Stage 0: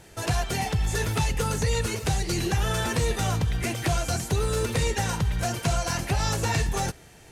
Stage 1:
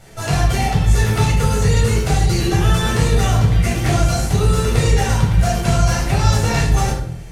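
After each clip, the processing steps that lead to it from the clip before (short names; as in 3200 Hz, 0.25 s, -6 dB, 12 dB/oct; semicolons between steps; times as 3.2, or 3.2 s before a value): shoebox room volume 1000 m³, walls furnished, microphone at 7 m; gain -1 dB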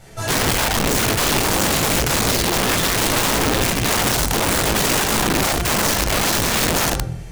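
wrapped overs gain 13.5 dB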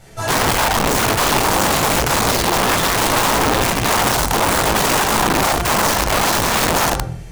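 dynamic EQ 940 Hz, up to +7 dB, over -37 dBFS, Q 0.98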